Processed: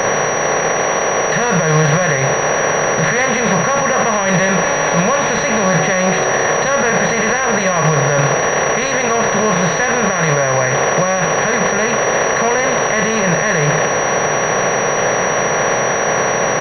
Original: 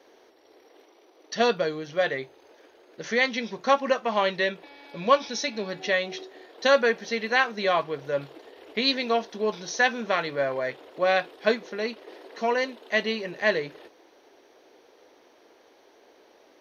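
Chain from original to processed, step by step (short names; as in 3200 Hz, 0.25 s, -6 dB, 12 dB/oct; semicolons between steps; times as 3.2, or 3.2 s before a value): per-bin compression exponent 0.4; in parallel at +2 dB: negative-ratio compressor -24 dBFS; on the sum: limiter -10.5 dBFS, peak gain reduction 10.5 dB; resonant low shelf 200 Hz +9.5 dB, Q 3; bit-crush 5-bit; doubler 32 ms -12 dB; pulse-width modulation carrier 5800 Hz; gain +5.5 dB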